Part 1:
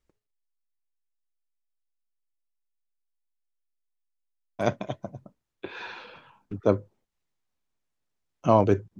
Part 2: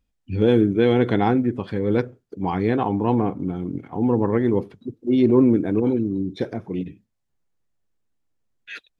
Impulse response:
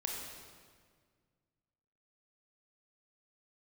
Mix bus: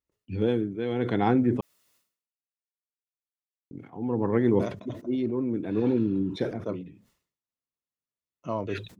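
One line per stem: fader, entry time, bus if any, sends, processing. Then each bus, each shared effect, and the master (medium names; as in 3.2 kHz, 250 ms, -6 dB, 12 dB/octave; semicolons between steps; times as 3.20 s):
-11.0 dB, 0.00 s, no send, comb of notches 790 Hz
-2.0 dB, 0.00 s, muted 1.61–3.71 s, no send, high-pass 87 Hz 24 dB/octave; tremolo 0.65 Hz, depth 74%; gate with hold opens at -50 dBFS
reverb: none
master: decay stretcher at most 110 dB/s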